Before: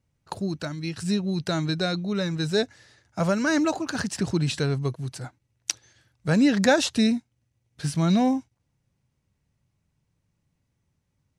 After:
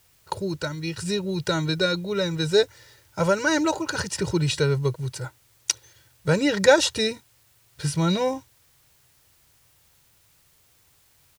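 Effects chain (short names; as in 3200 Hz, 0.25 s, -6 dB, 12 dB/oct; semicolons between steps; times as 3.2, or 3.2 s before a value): comb 2.1 ms, depth 88%; in parallel at -12 dB: requantised 8-bit, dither triangular; on the sum: gain -1 dB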